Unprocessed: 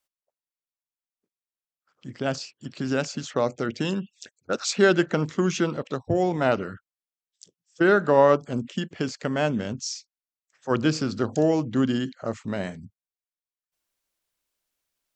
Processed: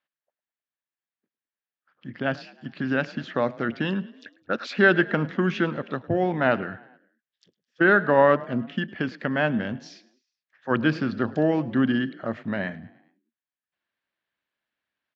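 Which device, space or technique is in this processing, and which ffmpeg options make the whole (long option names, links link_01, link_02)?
frequency-shifting delay pedal into a guitar cabinet: -filter_complex "[0:a]asplit=5[link_01][link_02][link_03][link_04][link_05];[link_02]adelay=105,afreqshift=32,volume=-21dB[link_06];[link_03]adelay=210,afreqshift=64,volume=-26.5dB[link_07];[link_04]adelay=315,afreqshift=96,volume=-32dB[link_08];[link_05]adelay=420,afreqshift=128,volume=-37.5dB[link_09];[link_01][link_06][link_07][link_08][link_09]amix=inputs=5:normalize=0,highpass=98,equalizer=frequency=230:width_type=q:width=4:gain=3,equalizer=frequency=430:width_type=q:width=4:gain=-4,equalizer=frequency=1700:width_type=q:width=4:gain=9,lowpass=frequency=3600:width=0.5412,lowpass=frequency=3600:width=1.3066"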